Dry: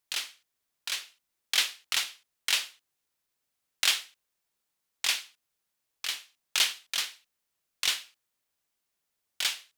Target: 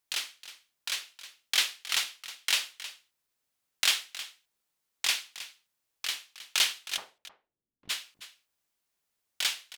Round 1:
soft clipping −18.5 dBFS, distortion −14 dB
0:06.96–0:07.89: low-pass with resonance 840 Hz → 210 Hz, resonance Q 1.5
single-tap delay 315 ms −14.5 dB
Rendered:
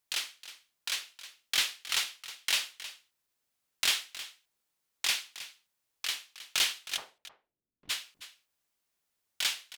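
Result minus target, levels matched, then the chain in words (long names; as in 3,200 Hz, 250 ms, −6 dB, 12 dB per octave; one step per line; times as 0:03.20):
soft clipping: distortion +17 dB
soft clipping −7 dBFS, distortion −31 dB
0:06.96–0:07.89: low-pass with resonance 840 Hz → 210 Hz, resonance Q 1.5
single-tap delay 315 ms −14.5 dB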